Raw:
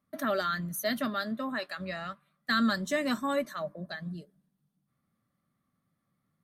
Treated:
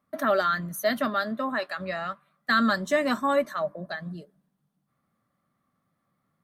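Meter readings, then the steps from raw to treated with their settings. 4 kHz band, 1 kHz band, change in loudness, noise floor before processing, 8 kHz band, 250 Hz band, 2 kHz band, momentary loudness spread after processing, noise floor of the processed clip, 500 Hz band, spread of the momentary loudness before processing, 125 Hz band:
+1.5 dB, +7.0 dB, +5.0 dB, -80 dBFS, +0.5 dB, +2.5 dB, +5.5 dB, 12 LU, -77 dBFS, +7.0 dB, 12 LU, +1.5 dB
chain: peaking EQ 860 Hz +8 dB 2.6 oct

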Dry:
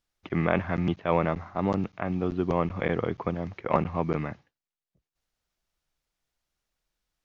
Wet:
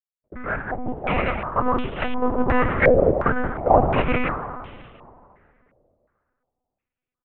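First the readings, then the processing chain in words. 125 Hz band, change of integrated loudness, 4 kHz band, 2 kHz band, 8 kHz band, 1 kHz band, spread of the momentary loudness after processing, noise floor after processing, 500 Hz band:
+2.5 dB, +7.0 dB, +8.0 dB, +10.5 dB, no reading, +9.0 dB, 13 LU, under -85 dBFS, +8.0 dB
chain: fade-in on the opening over 2.28 s; peaking EQ 240 Hz -5 dB 2.6 oct; in parallel at -5 dB: sample-and-hold 39×; on the sum: gate with hold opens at -46 dBFS; on a send: frequency-shifting echo 83 ms, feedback 65%, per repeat +130 Hz, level -13 dB; on the sum: plate-style reverb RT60 2.6 s, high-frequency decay 1×, pre-delay 0 ms, DRR 10.5 dB; monotone LPC vocoder at 8 kHz 250 Hz; loudness maximiser +15 dB; step-sequenced low-pass 2.8 Hz 590–3100 Hz; trim -7.5 dB

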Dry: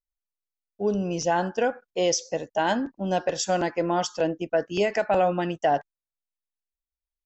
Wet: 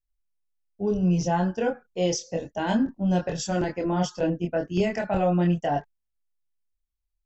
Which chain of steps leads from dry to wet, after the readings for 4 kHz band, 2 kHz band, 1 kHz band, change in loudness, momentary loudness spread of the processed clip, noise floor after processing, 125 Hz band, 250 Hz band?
-4.0 dB, -4.0 dB, -4.0 dB, 0.0 dB, 6 LU, -80 dBFS, +8.0 dB, +4.5 dB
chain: tone controls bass +14 dB, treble 0 dB; chorus voices 4, 0.31 Hz, delay 25 ms, depth 3.2 ms; trim -1 dB

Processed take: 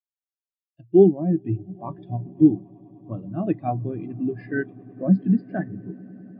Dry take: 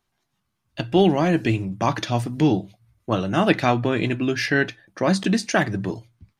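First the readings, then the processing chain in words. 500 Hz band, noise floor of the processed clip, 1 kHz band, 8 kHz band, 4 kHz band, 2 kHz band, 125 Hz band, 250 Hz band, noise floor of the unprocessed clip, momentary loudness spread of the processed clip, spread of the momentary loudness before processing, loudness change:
-0.5 dB, under -85 dBFS, -9.5 dB, under -40 dB, under -30 dB, -13.5 dB, -2.5 dB, 0.0 dB, -76 dBFS, 19 LU, 10 LU, -1.0 dB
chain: resampled via 11.025 kHz; echo with a slow build-up 101 ms, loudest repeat 8, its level -16 dB; spectral contrast expander 2.5:1

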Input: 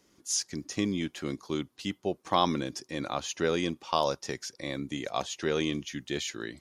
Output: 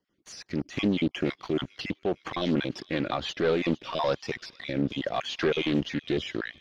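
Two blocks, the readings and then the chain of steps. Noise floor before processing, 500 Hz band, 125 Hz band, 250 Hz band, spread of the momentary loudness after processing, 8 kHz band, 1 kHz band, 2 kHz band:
-69 dBFS, +3.0 dB, +4.0 dB, +4.5 dB, 8 LU, -14.0 dB, -3.0 dB, +3.5 dB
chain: random holes in the spectrogram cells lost 26%; treble shelf 2.8 kHz +10 dB; level rider gain up to 7.5 dB; waveshaping leveller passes 3; peak limiter -12.5 dBFS, peak gain reduction 10 dB; rotary cabinet horn 6 Hz, later 0.7 Hz, at 3.26 s; distance through air 340 m; on a send: feedback echo behind a high-pass 456 ms, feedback 56%, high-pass 2.2 kHz, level -19.5 dB; on the sum: loudspeaker Doppler distortion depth 0.27 ms; trim -2.5 dB

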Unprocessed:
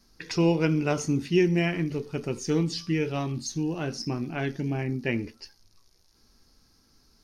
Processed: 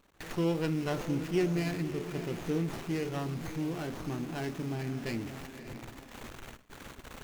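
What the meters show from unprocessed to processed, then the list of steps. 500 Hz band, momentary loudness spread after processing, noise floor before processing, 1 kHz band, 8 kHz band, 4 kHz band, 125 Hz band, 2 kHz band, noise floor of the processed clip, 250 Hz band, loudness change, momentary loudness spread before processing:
-6.0 dB, 17 LU, -63 dBFS, -4.5 dB, -9.5 dB, -7.5 dB, -6.0 dB, -7.5 dB, -54 dBFS, -6.0 dB, -6.5 dB, 9 LU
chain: jump at every zero crossing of -35 dBFS; treble shelf 4.7 kHz +7 dB; echo that smears into a reverb 583 ms, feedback 41%, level -11 dB; gate with hold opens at -29 dBFS; sliding maximum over 9 samples; trim -7.5 dB

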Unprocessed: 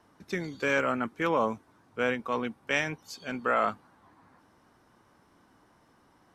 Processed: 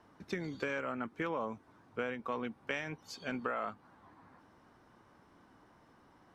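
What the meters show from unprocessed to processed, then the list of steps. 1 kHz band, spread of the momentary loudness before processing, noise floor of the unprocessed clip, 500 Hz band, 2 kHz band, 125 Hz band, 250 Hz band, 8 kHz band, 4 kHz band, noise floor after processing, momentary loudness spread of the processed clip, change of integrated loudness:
-10.0 dB, 11 LU, -64 dBFS, -9.0 dB, -9.5 dB, -6.5 dB, -7.0 dB, -10.0 dB, -9.0 dB, -64 dBFS, 6 LU, -9.0 dB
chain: compression 6:1, threshold -33 dBFS, peak gain reduction 11.5 dB; treble shelf 6.2 kHz -10.5 dB

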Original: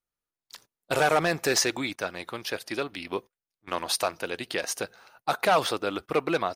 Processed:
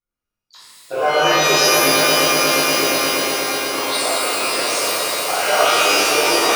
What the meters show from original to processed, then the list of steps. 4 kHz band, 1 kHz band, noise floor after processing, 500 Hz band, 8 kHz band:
+16.0 dB, +11.0 dB, -85 dBFS, +10.0 dB, +14.5 dB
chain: resonances exaggerated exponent 2; echo with a slow build-up 119 ms, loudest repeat 5, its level -9 dB; pitch-shifted reverb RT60 1.7 s, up +12 st, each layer -2 dB, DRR -10.5 dB; trim -4.5 dB

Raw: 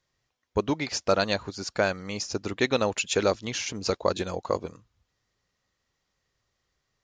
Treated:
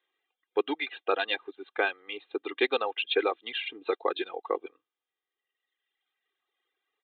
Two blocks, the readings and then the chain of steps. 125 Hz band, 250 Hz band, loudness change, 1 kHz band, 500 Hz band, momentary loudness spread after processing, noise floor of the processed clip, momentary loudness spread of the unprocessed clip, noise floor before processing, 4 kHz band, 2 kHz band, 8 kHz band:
under -30 dB, -7.0 dB, -3.0 dB, -1.5 dB, -3.5 dB, 9 LU, under -85 dBFS, 7 LU, -79 dBFS, -1.5 dB, 0.0 dB, under -40 dB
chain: reverb removal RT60 1.7 s; high-pass 290 Hz 24 dB/octave; treble shelf 3 kHz +11 dB; comb 2.5 ms, depth 78%; resampled via 8 kHz; trim -4 dB

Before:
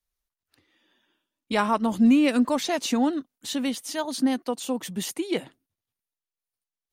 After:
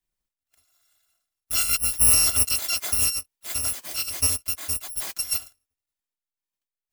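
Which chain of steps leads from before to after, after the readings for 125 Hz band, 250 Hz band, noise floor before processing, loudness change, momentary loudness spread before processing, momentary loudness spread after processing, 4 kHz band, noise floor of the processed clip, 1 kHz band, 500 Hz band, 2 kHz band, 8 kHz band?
no reading, -24.5 dB, under -85 dBFS, +3.5 dB, 11 LU, 12 LU, +6.0 dB, under -85 dBFS, -11.5 dB, -16.5 dB, -0.5 dB, +15.0 dB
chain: bit-reversed sample order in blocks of 256 samples

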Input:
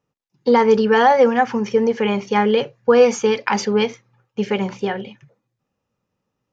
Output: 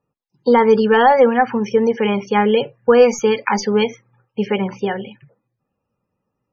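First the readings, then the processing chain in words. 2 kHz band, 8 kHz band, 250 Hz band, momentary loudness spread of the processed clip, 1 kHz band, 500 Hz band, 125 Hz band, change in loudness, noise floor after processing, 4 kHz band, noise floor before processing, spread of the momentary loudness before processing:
+1.0 dB, no reading, +1.5 dB, 12 LU, +1.5 dB, +1.5 dB, +1.5 dB, +1.5 dB, -78 dBFS, +0.5 dB, -79 dBFS, 12 LU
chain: tracing distortion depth 0.026 ms; loudest bins only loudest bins 64; trim +1.5 dB

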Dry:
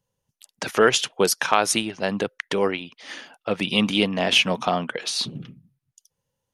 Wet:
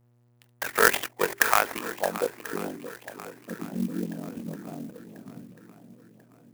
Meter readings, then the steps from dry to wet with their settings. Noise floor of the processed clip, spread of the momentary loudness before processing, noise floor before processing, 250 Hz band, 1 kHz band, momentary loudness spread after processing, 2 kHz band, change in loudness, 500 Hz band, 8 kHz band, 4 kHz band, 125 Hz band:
-63 dBFS, 15 LU, -83 dBFS, -8.0 dB, -4.0 dB, 21 LU, -2.0 dB, -5.0 dB, -7.5 dB, -6.0 dB, -14.5 dB, -7.5 dB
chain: in parallel at -9 dB: sample-rate reducer 1.4 kHz, jitter 0%; on the sum: frequency weighting A; low-pass sweep 2 kHz -> 250 Hz, 1.62–2.61 s; ring modulator 22 Hz; on a send: shuffle delay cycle 1040 ms, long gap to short 1.5:1, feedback 41%, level -14 dB; on the sum: mains buzz 120 Hz, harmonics 38, -61 dBFS -9 dB/octave; hum notches 50/100/150/200/250/300/350/400 Hz; sampling jitter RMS 0.053 ms; trim -2 dB

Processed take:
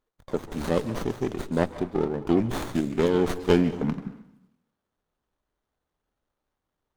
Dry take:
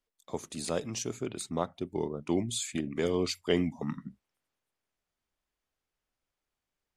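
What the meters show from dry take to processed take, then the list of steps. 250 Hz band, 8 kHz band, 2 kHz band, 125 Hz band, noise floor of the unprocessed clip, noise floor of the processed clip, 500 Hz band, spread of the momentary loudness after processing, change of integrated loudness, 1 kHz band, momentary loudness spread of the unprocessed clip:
+8.0 dB, -8.0 dB, +6.0 dB, +8.0 dB, under -85 dBFS, -84 dBFS, +7.5 dB, 10 LU, +6.5 dB, +7.5 dB, 10 LU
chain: band-stop 680 Hz, Q 13; plate-style reverb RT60 0.8 s, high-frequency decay 0.75×, pre-delay 120 ms, DRR 14 dB; sliding maximum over 17 samples; trim +7.5 dB

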